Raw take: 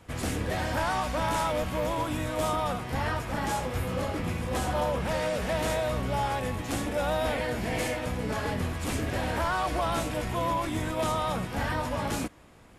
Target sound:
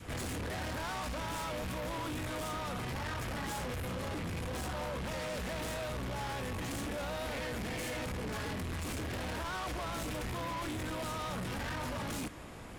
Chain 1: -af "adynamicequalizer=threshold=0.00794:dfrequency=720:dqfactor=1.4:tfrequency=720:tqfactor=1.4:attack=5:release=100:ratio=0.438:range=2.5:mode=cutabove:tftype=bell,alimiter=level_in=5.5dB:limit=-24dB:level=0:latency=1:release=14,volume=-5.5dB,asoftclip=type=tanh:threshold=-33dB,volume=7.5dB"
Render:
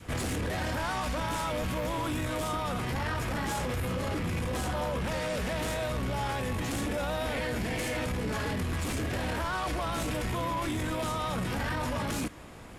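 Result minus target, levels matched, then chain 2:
soft clipping: distortion −10 dB
-af "adynamicequalizer=threshold=0.00794:dfrequency=720:dqfactor=1.4:tfrequency=720:tqfactor=1.4:attack=5:release=100:ratio=0.438:range=2.5:mode=cutabove:tftype=bell,alimiter=level_in=5.5dB:limit=-24dB:level=0:latency=1:release=14,volume=-5.5dB,asoftclip=type=tanh:threshold=-43.5dB,volume=7.5dB"

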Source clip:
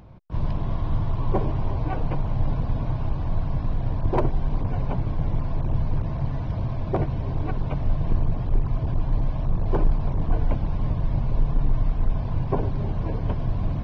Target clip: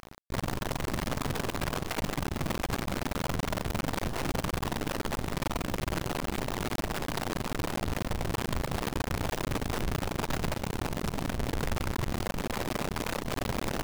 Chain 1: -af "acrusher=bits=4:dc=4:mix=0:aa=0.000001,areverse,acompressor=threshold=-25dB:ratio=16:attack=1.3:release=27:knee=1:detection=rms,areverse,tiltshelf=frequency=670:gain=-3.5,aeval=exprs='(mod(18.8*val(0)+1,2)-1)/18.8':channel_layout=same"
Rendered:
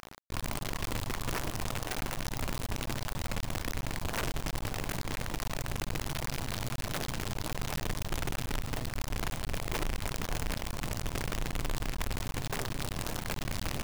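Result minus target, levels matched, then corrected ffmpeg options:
500 Hz band −3.0 dB
-af "acrusher=bits=4:dc=4:mix=0:aa=0.000001,areverse,acompressor=threshold=-25dB:ratio=16:attack=1.3:release=27:knee=1:detection=rms,areverse,aeval=exprs='(mod(18.8*val(0)+1,2)-1)/18.8':channel_layout=same"

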